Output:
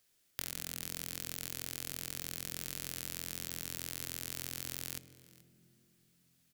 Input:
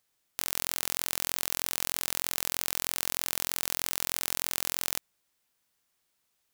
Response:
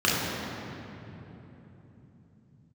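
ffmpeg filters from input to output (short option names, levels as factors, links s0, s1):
-filter_complex "[0:a]equalizer=f=980:t=o:w=0.95:g=-9,acrossover=split=250|7000[s0][s1][s2];[s0]acompressor=threshold=0.002:ratio=4[s3];[s1]acompressor=threshold=0.00501:ratio=4[s4];[s2]acompressor=threshold=0.00794:ratio=4[s5];[s3][s4][s5]amix=inputs=3:normalize=0,asplit=2[s6][s7];[s7]asetrate=35002,aresample=44100,atempo=1.25992,volume=0.282[s8];[s6][s8]amix=inputs=2:normalize=0,aecho=1:1:429:0.0891,asplit=2[s9][s10];[1:a]atrim=start_sample=2205,asetrate=66150,aresample=44100,lowshelf=f=310:g=11[s11];[s10][s11]afir=irnorm=-1:irlink=0,volume=0.0266[s12];[s9][s12]amix=inputs=2:normalize=0,volume=1.41"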